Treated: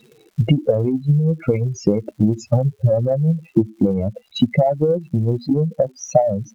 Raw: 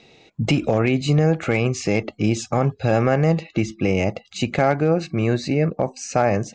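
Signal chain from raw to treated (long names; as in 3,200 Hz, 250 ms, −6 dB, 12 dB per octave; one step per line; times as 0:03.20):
expanding power law on the bin magnitudes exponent 3.9
surface crackle 350 per second −44 dBFS
transient designer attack +9 dB, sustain −4 dB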